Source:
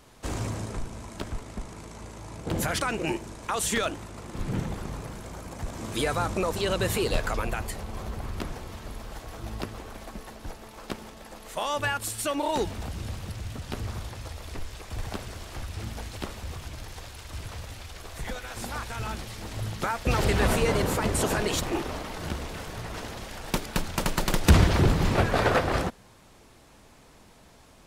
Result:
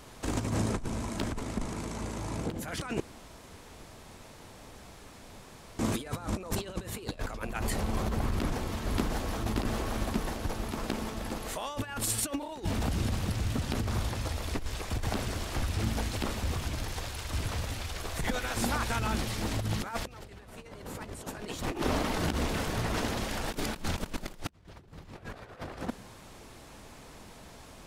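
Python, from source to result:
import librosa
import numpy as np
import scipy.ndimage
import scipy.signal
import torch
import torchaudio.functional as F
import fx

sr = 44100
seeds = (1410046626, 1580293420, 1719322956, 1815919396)

y = fx.echo_throw(x, sr, start_s=8.29, length_s=1.16, ms=580, feedback_pct=75, wet_db=-3.5)
y = fx.edit(y, sr, fx.room_tone_fill(start_s=3.0, length_s=2.79), tone=tone)
y = fx.over_compress(y, sr, threshold_db=-33.0, ratio=-0.5)
y = fx.dynamic_eq(y, sr, hz=250.0, q=1.9, threshold_db=-48.0, ratio=4.0, max_db=5)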